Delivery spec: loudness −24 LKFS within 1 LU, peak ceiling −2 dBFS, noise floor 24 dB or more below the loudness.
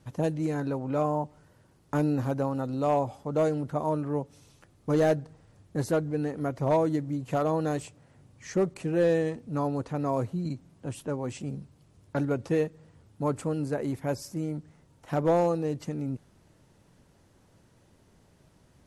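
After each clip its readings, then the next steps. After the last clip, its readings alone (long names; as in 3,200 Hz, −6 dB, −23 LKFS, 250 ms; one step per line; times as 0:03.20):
share of clipped samples 0.3%; peaks flattened at −17.0 dBFS; integrated loudness −29.5 LKFS; sample peak −17.0 dBFS; target loudness −24.0 LKFS
→ clipped peaks rebuilt −17 dBFS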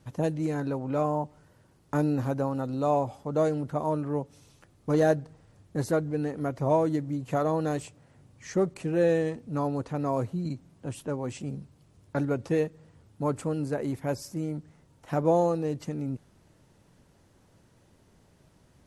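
share of clipped samples 0.0%; integrated loudness −29.5 LKFS; sample peak −10.0 dBFS; target loudness −24.0 LKFS
→ level +5.5 dB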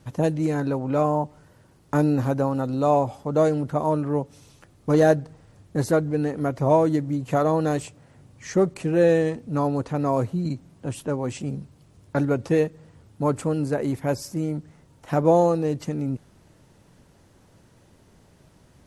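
integrated loudness −24.0 LKFS; sample peak −5.0 dBFS; background noise floor −57 dBFS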